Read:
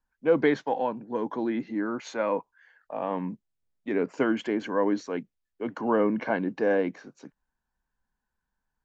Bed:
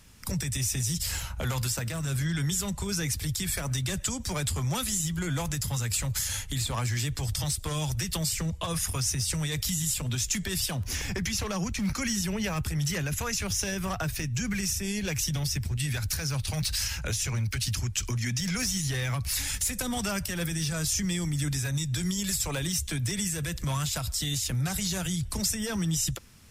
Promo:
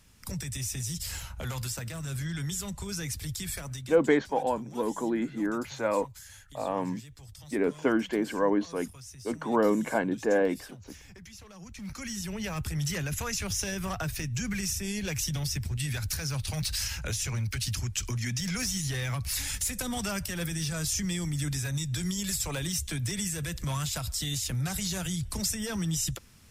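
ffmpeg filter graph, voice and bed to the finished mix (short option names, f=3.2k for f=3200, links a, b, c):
-filter_complex "[0:a]adelay=3650,volume=-0.5dB[a];[1:a]volume=11.5dB,afade=t=out:st=3.52:d=0.49:silence=0.211349,afade=t=in:st=11.56:d=1.23:silence=0.149624[b];[a][b]amix=inputs=2:normalize=0"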